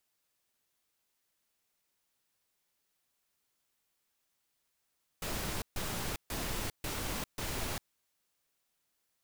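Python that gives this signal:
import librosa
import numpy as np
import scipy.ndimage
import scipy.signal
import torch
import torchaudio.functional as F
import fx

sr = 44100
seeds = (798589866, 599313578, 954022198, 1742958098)

y = fx.noise_burst(sr, seeds[0], colour='pink', on_s=0.4, off_s=0.14, bursts=5, level_db=-36.5)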